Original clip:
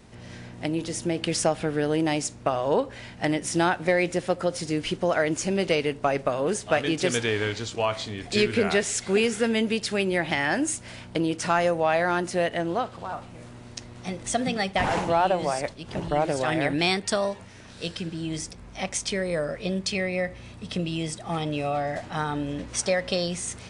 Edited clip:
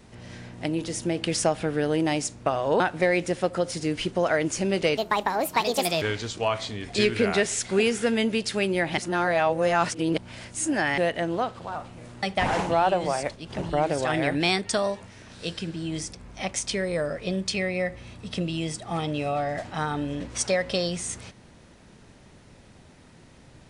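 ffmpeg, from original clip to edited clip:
-filter_complex "[0:a]asplit=7[s0][s1][s2][s3][s4][s5][s6];[s0]atrim=end=2.802[s7];[s1]atrim=start=3.658:end=5.834[s8];[s2]atrim=start=5.83:end=7.39,asetpts=PTS-STARTPTS,asetrate=65709,aresample=44100[s9];[s3]atrim=start=7.386:end=10.352[s10];[s4]atrim=start=10.348:end=12.352,asetpts=PTS-STARTPTS,areverse[s11];[s5]atrim=start=12.348:end=13.602[s12];[s6]atrim=start=14.608[s13];[s7][s8]acrossfade=d=0.004:c1=hsin:c2=hsin[s14];[s14][s9]acrossfade=d=0.004:c1=hsin:c2=hsin[s15];[s15][s10]acrossfade=d=0.004:c1=hsin:c2=hsin[s16];[s16][s11]acrossfade=d=0.004:c1=hsin:c2=hsin[s17];[s17][s12]acrossfade=d=0.004:c1=hsin:c2=hsin[s18];[s18][s13]acrossfade=d=0.004:c1=hsin:c2=hsin"

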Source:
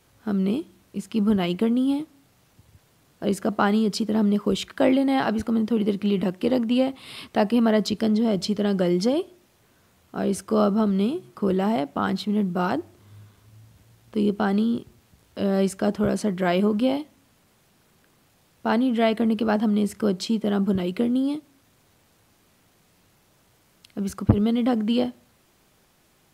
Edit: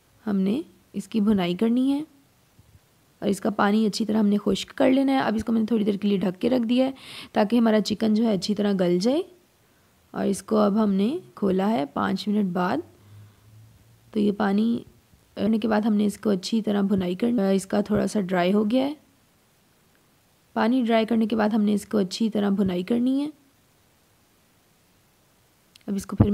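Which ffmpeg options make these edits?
-filter_complex "[0:a]asplit=3[s0][s1][s2];[s0]atrim=end=15.472[s3];[s1]atrim=start=19.238:end=21.152[s4];[s2]atrim=start=15.468[s5];[s3][s4]acrossfade=d=0.004:c1=hsin:c2=hsin[s6];[s6][s5]acrossfade=d=0.004:c1=hsin:c2=hsin"

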